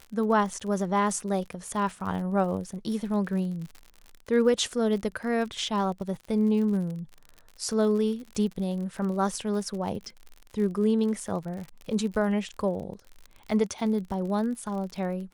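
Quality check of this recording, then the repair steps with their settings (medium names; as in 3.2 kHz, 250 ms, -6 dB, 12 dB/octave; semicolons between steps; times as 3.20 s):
crackle 52 per s -35 dBFS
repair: de-click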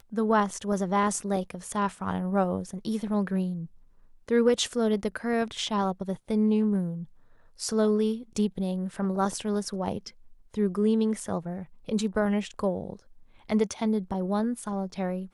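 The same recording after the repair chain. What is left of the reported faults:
nothing left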